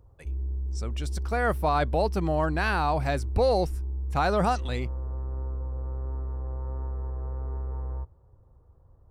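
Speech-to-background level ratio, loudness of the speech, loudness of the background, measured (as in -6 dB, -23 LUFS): 7.0 dB, -27.0 LUFS, -34.0 LUFS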